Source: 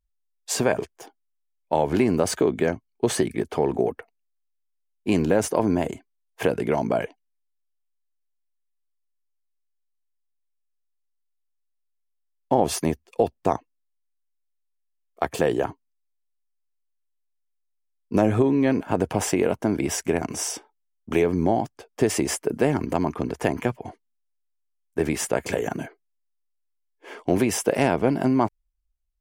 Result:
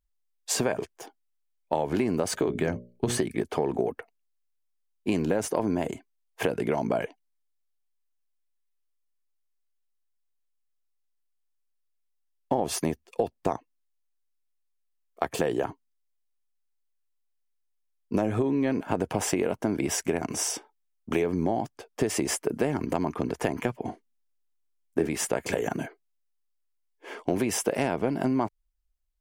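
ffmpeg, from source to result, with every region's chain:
-filter_complex "[0:a]asettb=1/sr,asplit=3[a][b][c];[a]atrim=end=2.284[d];[b]atrim=start=2.28:end=3.18,asetpts=PTS-STARTPTS,afade=t=in:d=0.004:c=qsin,afade=t=out:st=0.896:d=0.004:c=qsin,bandreject=f=60:t=h:w=6,bandreject=f=120:t=h:w=6,bandreject=f=180:t=h:w=6,bandreject=f=240:t=h:w=6,bandreject=f=300:t=h:w=6,bandreject=f=360:t=h:w=6,bandreject=f=420:t=h:w=6,bandreject=f=480:t=h:w=6,bandreject=f=540:t=h:w=6,bandreject=f=600:t=h:w=6,asubboost=boost=10.5:cutoff=230[e];[c]atrim=start=3.176[f];[d][e]acrossfade=d=0.004:c1=hsin:c2=qsin[g];[g][f]acrossfade=d=0.004:c1=qsin:c2=hsin,asettb=1/sr,asplit=3[h][i][j];[h]atrim=end=23.774[k];[i]atrim=start=23.77:end=25.07,asetpts=PTS-STARTPTS,afade=t=in:d=0.004:c=qsin,afade=t=out:st=1.296:d=0.004:c=qsin,equalizer=f=270:t=o:w=1.5:g=7,asplit=2[l][m];[m]adelay=36,volume=-11dB[n];[l][n]amix=inputs=2:normalize=0,atrim=end_sample=57330[o];[j]atrim=start=25.066[p];[k][o]acrossfade=d=0.004:c1=hsin:c2=qsin[q];[q][p]acrossfade=d=0.004:c1=qsin:c2=hsin,equalizer=f=67:t=o:w=1.2:g=-4,acompressor=threshold=-23dB:ratio=3"

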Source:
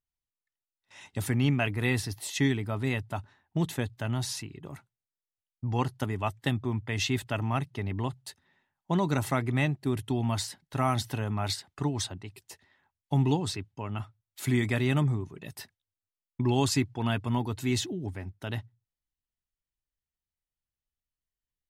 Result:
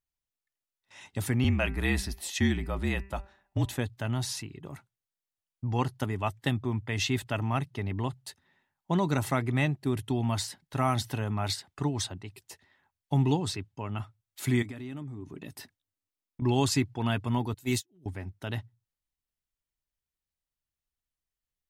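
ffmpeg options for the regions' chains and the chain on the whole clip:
-filter_complex "[0:a]asettb=1/sr,asplit=3[a][b][c];[a]atrim=end=1.444[d];[b]atrim=start=1.44:end=3.78,asetpts=PTS-STARTPTS,afade=t=in:d=0.004:c=qsin,afade=t=out:st=2.336:d=0.004:c=qsin,afreqshift=-46,bandreject=f=196.5:t=h:w=4,bandreject=f=393:t=h:w=4,bandreject=f=589.5:t=h:w=4,bandreject=f=786:t=h:w=4,bandreject=f=982.5:t=h:w=4,bandreject=f=1.179k:t=h:w=4,bandreject=f=1.3755k:t=h:w=4,bandreject=f=1.572k:t=h:w=4,bandreject=f=1.7685k:t=h:w=4,bandreject=f=1.965k:t=h:w=4,bandreject=f=2.1615k:t=h:w=4,bandreject=f=2.358k:t=h:w=4,bandreject=f=2.5545k:t=h:w=4,bandreject=f=2.751k:t=h:w=4[e];[c]atrim=start=3.776[f];[d][e]acrossfade=d=0.004:c1=hsin:c2=qsin[g];[g][f]acrossfade=d=0.004:c1=qsin:c2=hsin,asettb=1/sr,asplit=3[h][i][j];[h]atrim=end=14.624[k];[i]atrim=start=14.62:end=16.42,asetpts=PTS-STARTPTS,afade=t=in:d=0.004:c=qsin,afade=t=out:st=1.796:d=0.004:c=qsin,acompressor=threshold=-39dB:ratio=8:attack=3.2:release=140:knee=1:detection=peak,equalizer=f=280:t=o:w=0.61:g=9[l];[j]atrim=start=16.416[m];[k][l]acrossfade=d=0.004:c1=hsin:c2=qsin[n];[n][m]acrossfade=d=0.004:c1=qsin:c2=hsin,asettb=1/sr,asplit=3[o][p][q];[o]atrim=end=17.544[r];[p]atrim=start=17.54:end=18.06,asetpts=PTS-STARTPTS,afade=t=in:d=0.004:c=qsin,afade=t=out:st=0.516:d=0.004:c=qsin,agate=range=-46dB:threshold=-28dB:ratio=16:release=100:detection=peak,aemphasis=mode=production:type=50fm,acompressor=mode=upward:threshold=-33dB:ratio=2.5:attack=3.2:release=140:knee=2.83:detection=peak[s];[q]atrim=start=18.056[t];[r][s]acrossfade=d=0.004:c1=hsin:c2=qsin[u];[u][t]acrossfade=d=0.004:c1=qsin:c2=hsin"

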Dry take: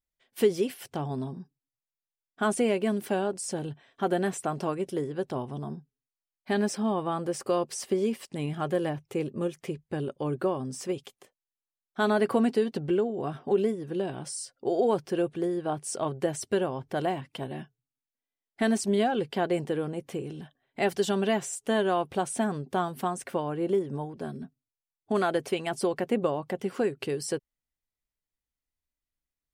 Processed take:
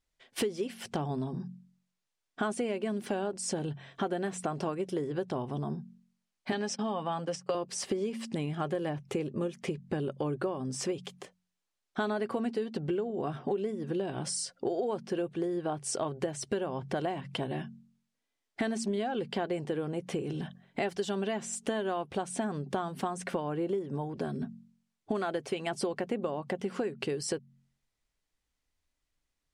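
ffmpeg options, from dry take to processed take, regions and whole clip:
-filter_complex "[0:a]asettb=1/sr,asplit=3[a][b][c];[a]atrim=end=6.524[d];[b]atrim=start=6.52:end=7.55,asetpts=PTS-STARTPTS,afade=t=in:d=0.004:c=qsin,afade=t=out:st=1.026:d=0.004:c=qsin,agate=range=-27dB:threshold=-36dB:ratio=16:release=100:detection=peak,highpass=f=150:w=0.5412,highpass=f=150:w=1.3066,equalizer=f=360:t=q:w=4:g=-8,equalizer=f=3k:t=q:w=4:g=5,equalizer=f=5.6k:t=q:w=4:g=6,lowpass=f=9.1k:w=0.5412,lowpass=f=9.1k:w=1.3066,aecho=1:1:7.2:0.35,atrim=end_sample=45423[e];[c]atrim=start=7.546[f];[d][e]acrossfade=d=0.004:c1=hsin:c2=qsin[g];[g][f]acrossfade=d=0.004:c1=qsin:c2=hsin,lowpass=8.2k,bandreject=f=45.45:t=h:w=4,bandreject=f=90.9:t=h:w=4,bandreject=f=136.35:t=h:w=4,bandreject=f=181.8:t=h:w=4,bandreject=f=227.25:t=h:w=4,acompressor=threshold=-40dB:ratio=5,volume=9dB"

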